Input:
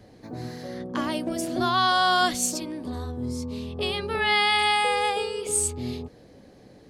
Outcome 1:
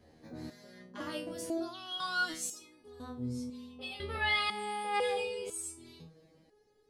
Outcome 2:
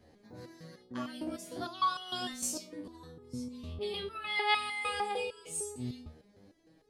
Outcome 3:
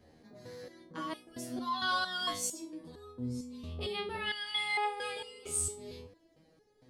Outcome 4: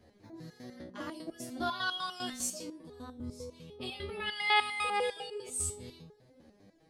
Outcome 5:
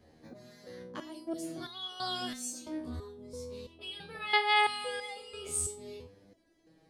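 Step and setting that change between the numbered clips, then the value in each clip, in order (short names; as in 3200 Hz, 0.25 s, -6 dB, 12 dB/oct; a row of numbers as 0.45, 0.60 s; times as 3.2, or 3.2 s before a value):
stepped resonator, rate: 2, 6.6, 4.4, 10, 3 Hz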